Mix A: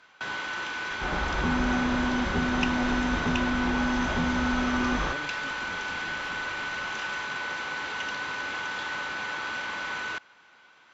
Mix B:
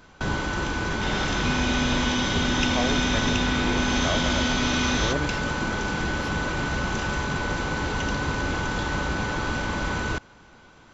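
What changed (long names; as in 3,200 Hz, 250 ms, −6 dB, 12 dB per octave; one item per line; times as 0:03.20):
speech +11.0 dB
first sound: remove resonant band-pass 2,200 Hz, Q 0.81
second sound: add high shelf with overshoot 2,000 Hz +13.5 dB, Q 1.5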